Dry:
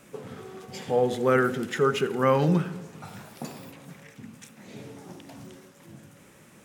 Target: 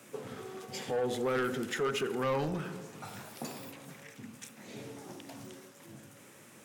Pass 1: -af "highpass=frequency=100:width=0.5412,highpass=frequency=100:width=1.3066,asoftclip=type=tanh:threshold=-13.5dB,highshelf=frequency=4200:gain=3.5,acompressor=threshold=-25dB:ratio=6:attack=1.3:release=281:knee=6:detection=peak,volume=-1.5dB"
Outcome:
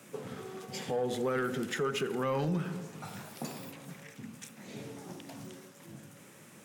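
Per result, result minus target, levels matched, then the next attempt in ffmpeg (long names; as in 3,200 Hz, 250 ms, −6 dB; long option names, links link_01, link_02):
soft clipping: distortion −8 dB; 125 Hz band +3.5 dB
-af "highpass=frequency=100:width=0.5412,highpass=frequency=100:width=1.3066,asoftclip=type=tanh:threshold=-20dB,highshelf=frequency=4200:gain=3.5,acompressor=threshold=-25dB:ratio=6:attack=1.3:release=281:knee=6:detection=peak,volume=-1.5dB"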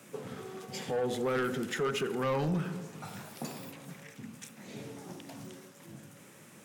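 125 Hz band +3.5 dB
-af "highpass=frequency=100:width=0.5412,highpass=frequency=100:width=1.3066,asoftclip=type=tanh:threshold=-20dB,highshelf=frequency=4200:gain=3.5,acompressor=threshold=-25dB:ratio=6:attack=1.3:release=281:knee=6:detection=peak,equalizer=frequency=170:width_type=o:width=0.44:gain=-7.5,volume=-1.5dB"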